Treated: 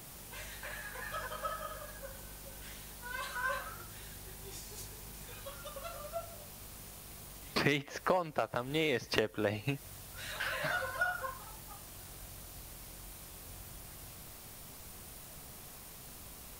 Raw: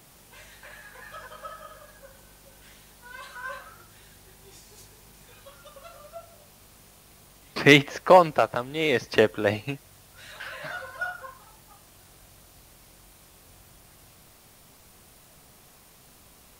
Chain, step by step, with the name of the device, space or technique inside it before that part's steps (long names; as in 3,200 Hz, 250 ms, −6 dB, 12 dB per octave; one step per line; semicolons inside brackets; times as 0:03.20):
ASMR close-microphone chain (low-shelf EQ 110 Hz +5 dB; downward compressor 8 to 1, threshold −30 dBFS, peak gain reduction 20.5 dB; high-shelf EQ 9,400 Hz +5.5 dB)
level +1.5 dB